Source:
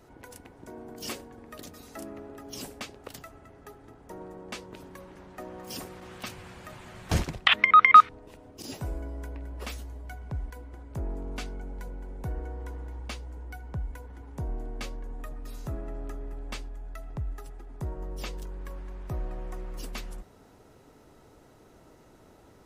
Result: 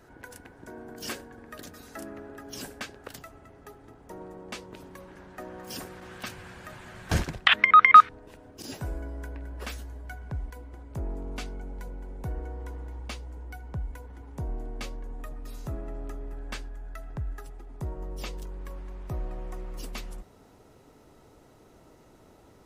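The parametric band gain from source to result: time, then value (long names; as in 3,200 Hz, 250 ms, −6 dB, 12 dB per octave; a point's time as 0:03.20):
parametric band 1,600 Hz 0.28 octaves
+10.5 dB
from 0:03.15 +0.5 dB
from 0:05.08 +7 dB
from 0:10.34 −1 dB
from 0:16.32 +8 dB
from 0:17.46 −2.5 dB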